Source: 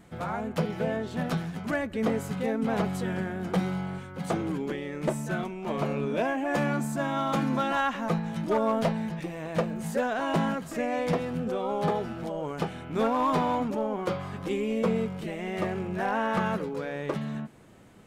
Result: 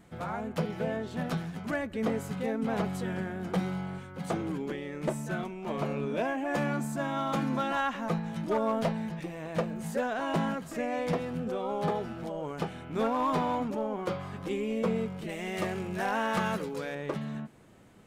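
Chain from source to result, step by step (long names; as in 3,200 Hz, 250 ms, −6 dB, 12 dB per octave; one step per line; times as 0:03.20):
0:15.29–0:16.95: high-shelf EQ 3,100 Hz +11 dB
level −3 dB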